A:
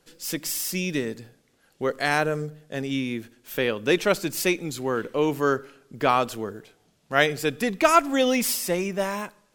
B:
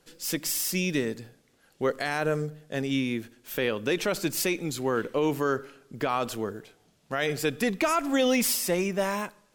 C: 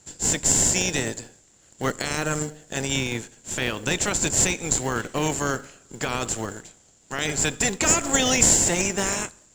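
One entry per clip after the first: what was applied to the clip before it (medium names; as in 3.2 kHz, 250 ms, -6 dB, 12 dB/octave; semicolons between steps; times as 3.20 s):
peak limiter -15.5 dBFS, peak gain reduction 11.5 dB
spectral peaks clipped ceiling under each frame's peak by 14 dB; resonant low-pass 7.3 kHz, resonance Q 14; in parallel at -7 dB: sample-and-hold 36×; on the sum: trim -1 dB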